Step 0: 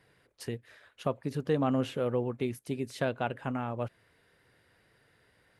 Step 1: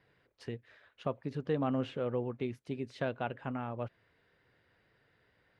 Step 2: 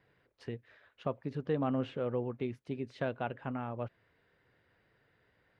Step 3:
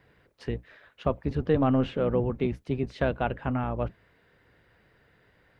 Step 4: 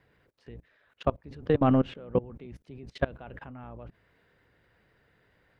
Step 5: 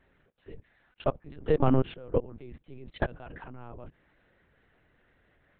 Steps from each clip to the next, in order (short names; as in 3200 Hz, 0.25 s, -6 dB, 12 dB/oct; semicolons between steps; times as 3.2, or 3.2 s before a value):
LPF 4100 Hz 12 dB/oct; gain -4 dB
high shelf 5300 Hz -8.5 dB
octaver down 1 oct, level -3 dB; gain +8 dB
level quantiser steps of 23 dB; gain +2.5 dB
LPC vocoder at 8 kHz pitch kept